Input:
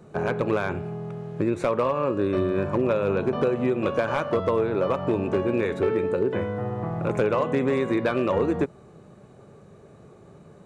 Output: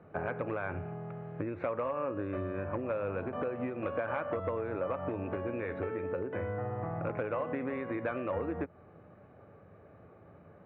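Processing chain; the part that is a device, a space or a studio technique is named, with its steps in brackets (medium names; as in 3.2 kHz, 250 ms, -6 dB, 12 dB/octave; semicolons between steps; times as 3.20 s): bass amplifier (compression 4:1, threshold -26 dBFS, peak gain reduction 7 dB; cabinet simulation 74–2300 Hz, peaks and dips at 87 Hz +4 dB, 140 Hz -10 dB, 210 Hz -8 dB, 390 Hz -9 dB, 990 Hz -4 dB); trim -2 dB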